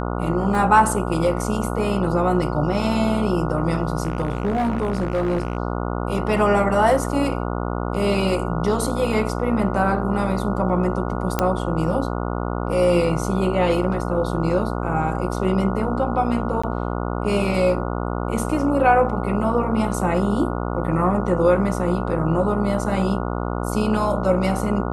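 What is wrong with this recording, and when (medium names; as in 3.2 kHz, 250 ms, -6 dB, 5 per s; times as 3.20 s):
buzz 60 Hz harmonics 24 -25 dBFS
0.55 s: dropout 2.1 ms
4.03–5.57 s: clipped -17 dBFS
11.39 s: pop -5 dBFS
16.62–16.64 s: dropout 15 ms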